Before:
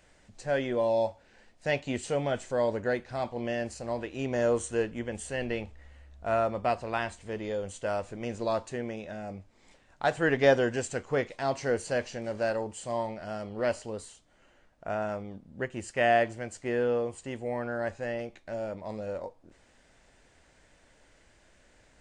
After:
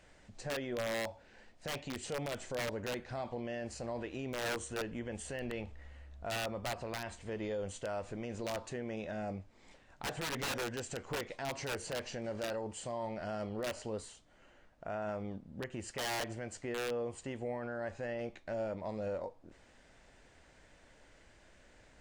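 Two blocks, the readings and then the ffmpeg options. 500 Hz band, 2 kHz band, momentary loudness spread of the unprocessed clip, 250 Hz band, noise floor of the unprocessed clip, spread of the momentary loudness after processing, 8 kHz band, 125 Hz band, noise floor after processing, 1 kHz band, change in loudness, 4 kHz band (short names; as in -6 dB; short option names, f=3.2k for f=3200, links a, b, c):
-10.0 dB, -8.0 dB, 11 LU, -7.0 dB, -63 dBFS, 6 LU, -2.0 dB, -6.0 dB, -63 dBFS, -9.5 dB, -8.5 dB, -0.5 dB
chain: -af "aeval=exprs='(mod(10.6*val(0)+1,2)-1)/10.6':c=same,alimiter=level_in=6.5dB:limit=-24dB:level=0:latency=1:release=87,volume=-6.5dB,highshelf=f=8.6k:g=-8"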